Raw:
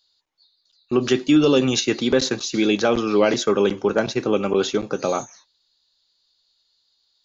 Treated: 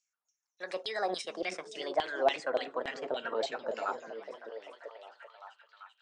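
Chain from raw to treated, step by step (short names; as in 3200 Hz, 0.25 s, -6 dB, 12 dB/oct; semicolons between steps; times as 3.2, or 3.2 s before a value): speed glide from 155% -> 86%; LFO band-pass saw down 3.5 Hz 630–3300 Hz; delay with a stepping band-pass 0.39 s, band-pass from 200 Hz, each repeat 0.7 oct, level -3.5 dB; gain -4.5 dB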